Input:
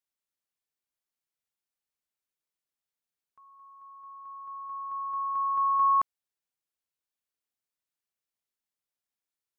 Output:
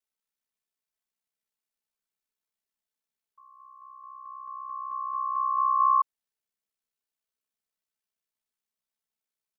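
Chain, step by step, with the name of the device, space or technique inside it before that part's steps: ring-modulated robot voice (ring modulator 32 Hz; comb 4.6 ms, depth 83%)

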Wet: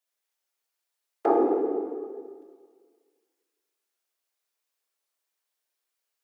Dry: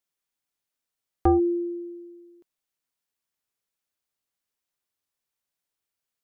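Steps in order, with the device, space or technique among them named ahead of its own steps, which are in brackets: whispering ghost (whisper effect; high-pass 360 Hz 24 dB/octave; reverberation RT60 1.8 s, pre-delay 12 ms, DRR -0.5 dB)

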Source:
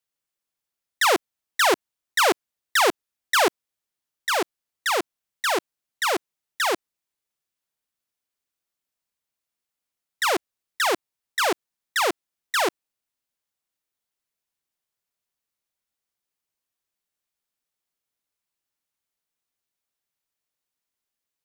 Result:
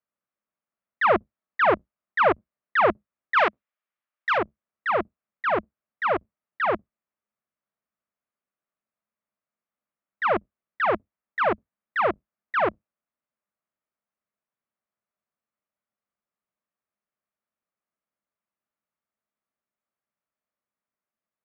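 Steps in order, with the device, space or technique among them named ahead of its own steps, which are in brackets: sub-octave bass pedal (octave divider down 2 oct, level -3 dB; cabinet simulation 64–2300 Hz, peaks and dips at 79 Hz -10 dB, 210 Hz +9 dB, 610 Hz +7 dB, 1.2 kHz +6 dB); 3.37–4.38 s: tilt EQ +4.5 dB/octave; trim -2.5 dB

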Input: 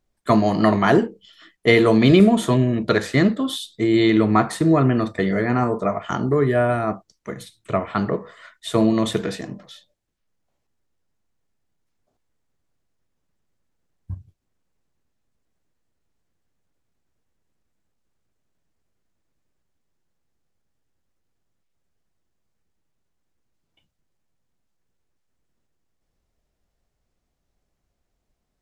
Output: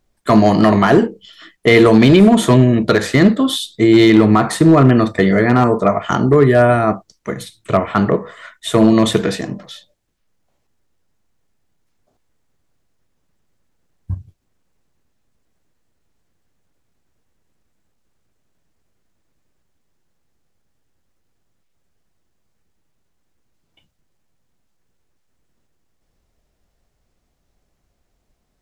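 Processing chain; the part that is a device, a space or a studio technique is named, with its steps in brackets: limiter into clipper (peak limiter -8 dBFS, peak gain reduction 6 dB; hard clipper -10.5 dBFS, distortion -24 dB); 7.89–8.84 s: peaking EQ 4.6 kHz -5.5 dB 0.35 oct; trim +8 dB

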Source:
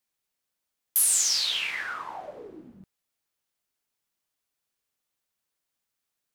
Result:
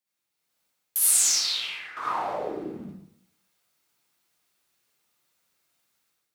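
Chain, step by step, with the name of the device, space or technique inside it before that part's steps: 1.32–1.97 s: expander -21 dBFS; far laptop microphone (reverberation RT60 0.70 s, pre-delay 51 ms, DRR -6.5 dB; high-pass 110 Hz 6 dB/octave; level rider gain up to 10.5 dB); trim -6.5 dB

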